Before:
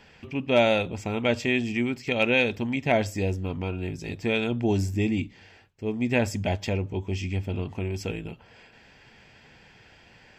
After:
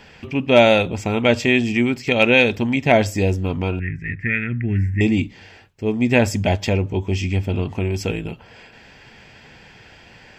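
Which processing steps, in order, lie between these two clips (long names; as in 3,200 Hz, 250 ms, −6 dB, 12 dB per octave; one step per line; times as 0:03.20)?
0:03.79–0:05.01: drawn EQ curve 150 Hz 0 dB, 870 Hz −27 dB, 1,900 Hz +13 dB, 3,700 Hz −29 dB
level +8 dB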